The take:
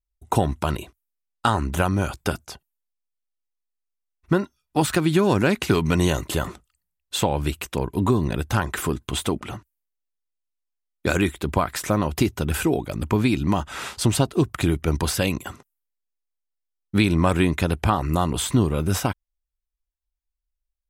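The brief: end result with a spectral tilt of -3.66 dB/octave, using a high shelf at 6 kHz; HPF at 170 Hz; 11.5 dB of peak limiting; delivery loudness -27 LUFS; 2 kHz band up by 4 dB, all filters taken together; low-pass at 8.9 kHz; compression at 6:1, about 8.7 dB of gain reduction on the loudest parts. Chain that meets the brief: high-pass 170 Hz; low-pass 8.9 kHz; peaking EQ 2 kHz +4.5 dB; treble shelf 6 kHz +8 dB; compression 6:1, threshold -24 dBFS; trim +4.5 dB; peak limiter -13 dBFS

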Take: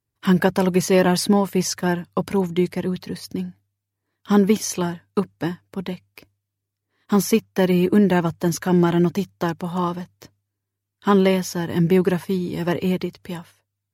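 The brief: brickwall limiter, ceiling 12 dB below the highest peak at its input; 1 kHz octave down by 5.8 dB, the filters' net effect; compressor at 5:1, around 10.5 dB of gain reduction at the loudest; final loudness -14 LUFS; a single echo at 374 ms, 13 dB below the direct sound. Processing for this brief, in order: peaking EQ 1 kHz -7.5 dB; compression 5:1, threshold -24 dBFS; peak limiter -24.5 dBFS; delay 374 ms -13 dB; trim +20 dB

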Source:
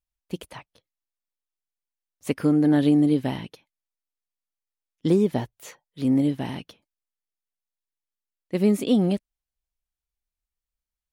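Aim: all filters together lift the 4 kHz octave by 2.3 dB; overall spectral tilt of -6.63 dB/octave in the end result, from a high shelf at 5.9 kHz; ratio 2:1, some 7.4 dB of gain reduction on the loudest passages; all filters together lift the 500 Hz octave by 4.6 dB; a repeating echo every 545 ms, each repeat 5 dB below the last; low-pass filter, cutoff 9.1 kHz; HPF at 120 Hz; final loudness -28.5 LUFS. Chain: high-pass 120 Hz; low-pass 9.1 kHz; peaking EQ 500 Hz +6 dB; peaking EQ 4 kHz +5 dB; treble shelf 5.9 kHz -6 dB; compression 2:1, threshold -27 dBFS; feedback delay 545 ms, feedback 56%, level -5 dB; trim +0.5 dB

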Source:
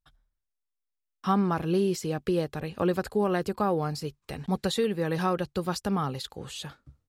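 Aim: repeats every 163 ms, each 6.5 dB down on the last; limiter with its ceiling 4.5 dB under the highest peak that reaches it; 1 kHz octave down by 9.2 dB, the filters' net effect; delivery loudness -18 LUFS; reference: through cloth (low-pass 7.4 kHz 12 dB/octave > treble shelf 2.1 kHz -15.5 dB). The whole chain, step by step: peaking EQ 1 kHz -9 dB; peak limiter -20 dBFS; low-pass 7.4 kHz 12 dB/octave; treble shelf 2.1 kHz -15.5 dB; feedback delay 163 ms, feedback 47%, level -6.5 dB; trim +13 dB

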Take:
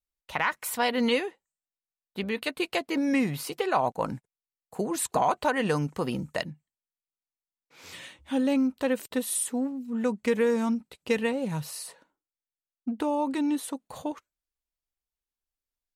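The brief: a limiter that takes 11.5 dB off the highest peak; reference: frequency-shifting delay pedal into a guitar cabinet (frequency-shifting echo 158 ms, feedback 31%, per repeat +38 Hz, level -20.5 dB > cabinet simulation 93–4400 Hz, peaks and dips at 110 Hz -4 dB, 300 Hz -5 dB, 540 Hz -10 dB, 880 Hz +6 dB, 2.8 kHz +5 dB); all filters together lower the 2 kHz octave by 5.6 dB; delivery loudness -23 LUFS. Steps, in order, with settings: peaking EQ 2 kHz -9 dB; peak limiter -25.5 dBFS; frequency-shifting echo 158 ms, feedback 31%, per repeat +38 Hz, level -20.5 dB; cabinet simulation 93–4400 Hz, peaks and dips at 110 Hz -4 dB, 300 Hz -5 dB, 540 Hz -10 dB, 880 Hz +6 dB, 2.8 kHz +5 dB; trim +14 dB

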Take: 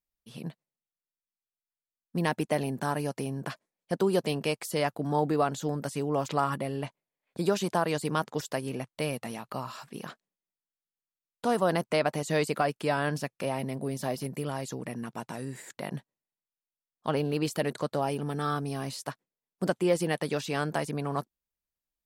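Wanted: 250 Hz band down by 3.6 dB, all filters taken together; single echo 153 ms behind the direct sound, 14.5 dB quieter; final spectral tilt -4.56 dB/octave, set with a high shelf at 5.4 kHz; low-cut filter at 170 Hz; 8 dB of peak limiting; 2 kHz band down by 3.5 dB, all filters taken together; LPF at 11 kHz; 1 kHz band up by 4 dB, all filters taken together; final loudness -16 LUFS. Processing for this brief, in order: high-pass 170 Hz; low-pass 11 kHz; peaking EQ 250 Hz -4 dB; peaking EQ 1 kHz +7.5 dB; peaking EQ 2 kHz -8.5 dB; treble shelf 5.4 kHz +5 dB; peak limiter -18 dBFS; delay 153 ms -14.5 dB; trim +16.5 dB

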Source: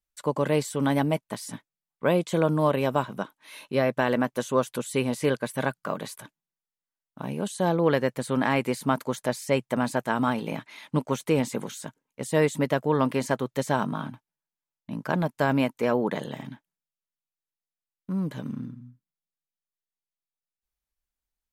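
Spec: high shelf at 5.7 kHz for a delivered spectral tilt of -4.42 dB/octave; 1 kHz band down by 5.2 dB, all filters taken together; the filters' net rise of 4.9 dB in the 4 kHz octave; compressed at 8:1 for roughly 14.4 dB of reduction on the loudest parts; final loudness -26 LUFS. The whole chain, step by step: peaking EQ 1 kHz -7 dB; peaking EQ 4 kHz +5 dB; treble shelf 5.7 kHz +5.5 dB; compression 8:1, threshold -34 dBFS; trim +13 dB

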